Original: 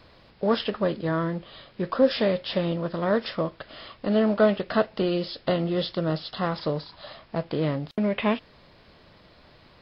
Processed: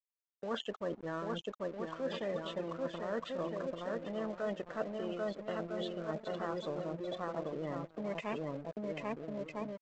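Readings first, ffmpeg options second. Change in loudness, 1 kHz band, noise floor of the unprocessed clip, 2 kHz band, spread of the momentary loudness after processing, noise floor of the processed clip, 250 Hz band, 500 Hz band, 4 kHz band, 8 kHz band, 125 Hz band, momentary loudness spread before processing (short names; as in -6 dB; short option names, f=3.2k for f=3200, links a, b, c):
-13.0 dB, -10.5 dB, -55 dBFS, -11.5 dB, 3 LU, under -85 dBFS, -14.0 dB, -11.5 dB, -13.5 dB, n/a, -15.0 dB, 12 LU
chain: -filter_complex "[0:a]acrossover=split=4200[a][b];[b]acompressor=threshold=-53dB:ratio=4:attack=1:release=60[c];[a][c]amix=inputs=2:normalize=0,aecho=1:1:790|1304|1637|1854|1995:0.631|0.398|0.251|0.158|0.1,afftfilt=real='re*gte(hypot(re,im),0.0355)':imag='im*gte(hypot(re,im),0.0355)':win_size=1024:overlap=0.75,areverse,acompressor=threshold=-29dB:ratio=10,areverse,highpass=f=330:p=1,aresample=16000,aeval=exprs='sgn(val(0))*max(abs(val(0))-0.00316,0)':c=same,aresample=44100,volume=-2dB"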